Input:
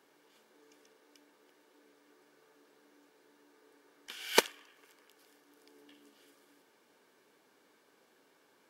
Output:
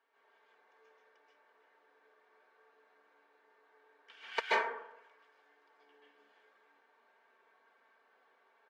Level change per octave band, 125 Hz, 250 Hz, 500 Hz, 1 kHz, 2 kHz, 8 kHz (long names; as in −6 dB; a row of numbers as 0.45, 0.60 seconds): below −15 dB, −12.0 dB, −4.5 dB, +2.5 dB, +0.5 dB, −20.5 dB